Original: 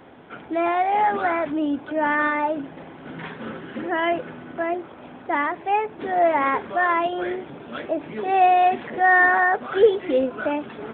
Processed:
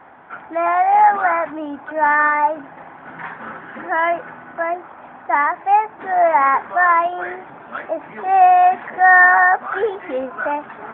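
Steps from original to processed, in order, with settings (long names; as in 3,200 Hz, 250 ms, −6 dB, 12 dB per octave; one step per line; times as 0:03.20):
drawn EQ curve 460 Hz 0 dB, 830 Hz +14 dB, 1,800 Hz +12 dB, 3,600 Hz −5 dB
level −5.5 dB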